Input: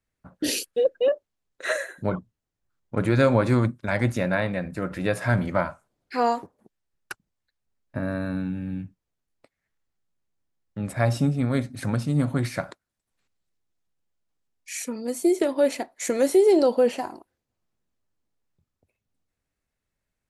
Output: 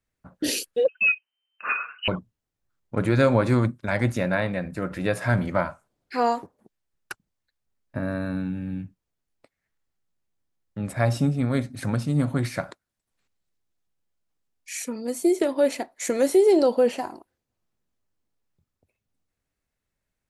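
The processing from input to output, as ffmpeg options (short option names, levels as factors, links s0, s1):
-filter_complex "[0:a]asettb=1/sr,asplit=3[s0][s1][s2];[s0]atrim=end=0.884[s3];[s1]atrim=start=0.88:end=2.08,asetpts=PTS-STARTPTS,afade=t=in:d=0.004:c=qsin,afade=t=out:st=1.196:d=0.004:c=qsin,lowpass=f=2600:t=q:w=0.5098,lowpass=f=2600:t=q:w=0.6013,lowpass=f=2600:t=q:w=0.9,lowpass=f=2600:t=q:w=2.563,afreqshift=-3100[s4];[s2]atrim=start=2.076[s5];[s3][s4]acrossfade=d=0.004:c1=hsin:c2=qsin[s6];[s6][s5]acrossfade=d=0.004:c1=qsin:c2=hsin"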